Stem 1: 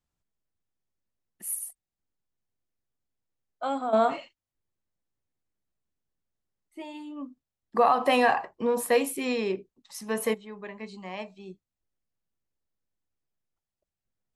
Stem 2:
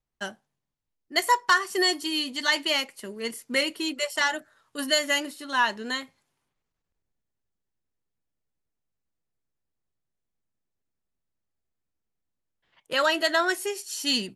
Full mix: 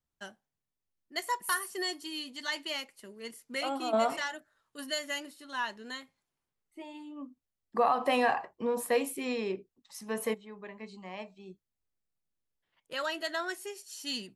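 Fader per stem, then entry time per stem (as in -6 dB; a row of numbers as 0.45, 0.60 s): -5.0, -11.0 dB; 0.00, 0.00 s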